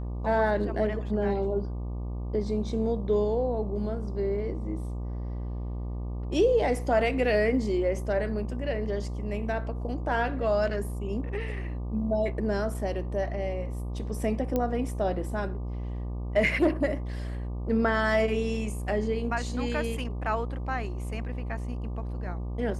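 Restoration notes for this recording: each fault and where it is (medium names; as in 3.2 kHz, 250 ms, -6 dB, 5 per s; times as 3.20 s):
buzz 60 Hz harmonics 20 -33 dBFS
14.56 s: pop -15 dBFS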